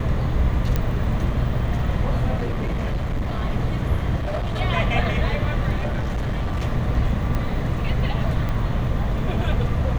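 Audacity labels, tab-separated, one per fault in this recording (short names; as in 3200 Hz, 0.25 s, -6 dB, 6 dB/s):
0.760000	0.760000	pop -9 dBFS
2.380000	3.440000	clipped -20 dBFS
4.160000	4.610000	clipped -21.5 dBFS
5.790000	6.630000	clipped -20 dBFS
7.350000	7.350000	pop -14 dBFS
8.490000	8.490000	pop -15 dBFS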